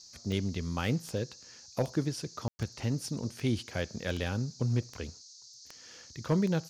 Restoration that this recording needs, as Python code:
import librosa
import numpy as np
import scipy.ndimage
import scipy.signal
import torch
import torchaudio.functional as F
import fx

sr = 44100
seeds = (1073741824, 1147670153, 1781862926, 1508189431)

y = fx.fix_declip(x, sr, threshold_db=-19.0)
y = fx.fix_declick_ar(y, sr, threshold=10.0)
y = fx.fix_ambience(y, sr, seeds[0], print_start_s=5.19, print_end_s=5.69, start_s=2.48, end_s=2.59)
y = fx.noise_reduce(y, sr, print_start_s=5.19, print_end_s=5.69, reduce_db=24.0)